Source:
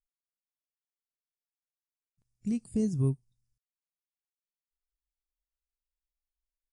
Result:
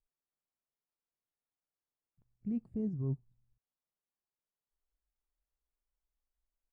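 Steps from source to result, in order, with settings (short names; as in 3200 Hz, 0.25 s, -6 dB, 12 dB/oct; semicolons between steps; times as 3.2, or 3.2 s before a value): LPF 1200 Hz 12 dB/oct; reverse; compressor 6:1, threshold -37 dBFS, peak gain reduction 14 dB; reverse; gain +4 dB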